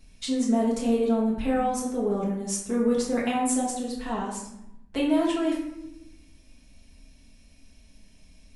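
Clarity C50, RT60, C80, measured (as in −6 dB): 4.0 dB, 0.85 s, 7.5 dB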